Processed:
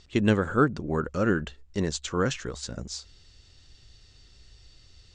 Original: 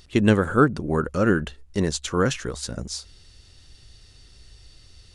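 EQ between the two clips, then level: elliptic low-pass 7.7 kHz, stop band 60 dB; -3.5 dB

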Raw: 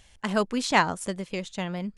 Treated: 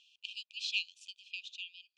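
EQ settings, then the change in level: brick-wall FIR high-pass 2.4 kHz; distance through air 190 m; treble shelf 8.8 kHz -11 dB; +3.0 dB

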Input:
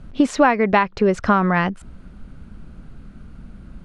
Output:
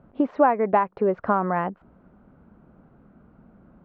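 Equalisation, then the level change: band-pass filter 830 Hz, Q 1.1; distance through air 240 m; tilt shelf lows +5 dB, about 700 Hz; 0.0 dB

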